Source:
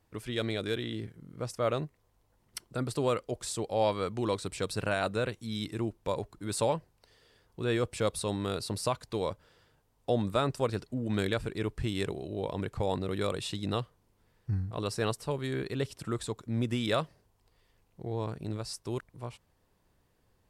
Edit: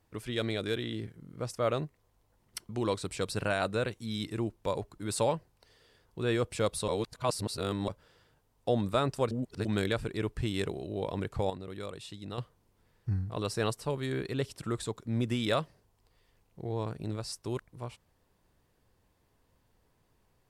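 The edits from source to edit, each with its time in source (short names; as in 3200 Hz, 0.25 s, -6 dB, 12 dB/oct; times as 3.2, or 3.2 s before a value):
2.69–4.1 cut
8.29–9.29 reverse
10.72–11.06 reverse
12.91–13.79 gain -9 dB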